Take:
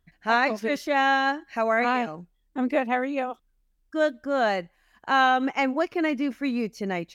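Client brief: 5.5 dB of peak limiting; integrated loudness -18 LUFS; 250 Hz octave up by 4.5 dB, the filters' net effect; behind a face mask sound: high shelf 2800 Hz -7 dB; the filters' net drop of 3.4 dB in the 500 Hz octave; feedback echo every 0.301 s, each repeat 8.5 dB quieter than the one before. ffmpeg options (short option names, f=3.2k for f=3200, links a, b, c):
-af "equalizer=f=250:t=o:g=6.5,equalizer=f=500:t=o:g=-5.5,alimiter=limit=-16dB:level=0:latency=1,highshelf=f=2.8k:g=-7,aecho=1:1:301|602|903|1204:0.376|0.143|0.0543|0.0206,volume=8.5dB"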